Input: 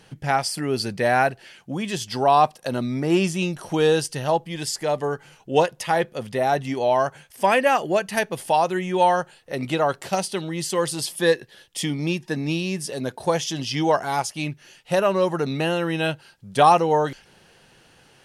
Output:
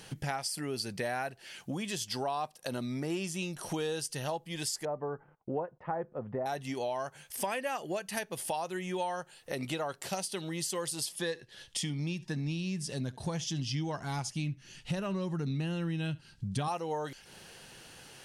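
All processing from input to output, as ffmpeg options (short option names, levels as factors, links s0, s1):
-filter_complex "[0:a]asettb=1/sr,asplit=3[s0][s1][s2];[s0]atrim=end=4.854[s3];[s1]atrim=start=4.85:end=6.46,asetpts=PTS-STARTPTS,afade=t=in:d=0.004:c=qsin,afade=t=out:st=1.606:d=0.004:c=qsin,lowpass=f=1300:w=0.5412,lowpass=f=1300:w=1.3066,agate=range=0.0355:threshold=0.00251:ratio=16:release=100:detection=peak[s4];[s2]atrim=start=6.456[s5];[s3][s4]acrossfade=d=0.004:c1=hsin:c2=qsin[s6];[s6][s5]acrossfade=d=0.004:c1=qsin:c2=hsin,asettb=1/sr,asplit=3[s7][s8][s9];[s7]atrim=end=11.094[s10];[s8]atrim=start=11.09:end=16.68,asetpts=PTS-STARTPTS,afade=t=in:d=0.004:c=qsin,afade=t=out:st=5.586:d=0.004:c=qsin,lowpass=7800,asubboost=boost=9:cutoff=200,aecho=1:1:71:0.0708,atrim=end_sample=246519[s11];[s9]atrim=start=16.676[s12];[s10][s11]acrossfade=d=0.004:c1=hsin:c2=qsin[s13];[s13][s12]acrossfade=d=0.004:c1=qsin:c2=hsin,highshelf=f=4000:g=8.5,acompressor=threshold=0.0178:ratio=4"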